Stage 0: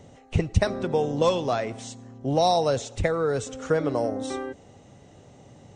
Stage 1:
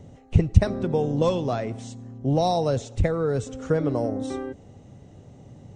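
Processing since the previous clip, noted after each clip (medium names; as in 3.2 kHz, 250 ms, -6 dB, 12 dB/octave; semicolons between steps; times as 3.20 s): bass shelf 370 Hz +12 dB; trim -5 dB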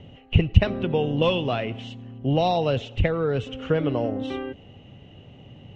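resonant low-pass 2.9 kHz, resonance Q 8.8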